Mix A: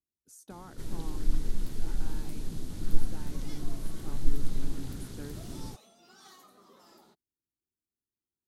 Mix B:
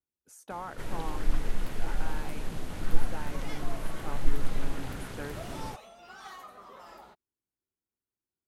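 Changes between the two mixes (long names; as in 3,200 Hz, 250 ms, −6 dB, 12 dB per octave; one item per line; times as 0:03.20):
second sound: remove high-pass filter 170 Hz 12 dB per octave
master: add flat-topped bell 1,200 Hz +11.5 dB 2.9 octaves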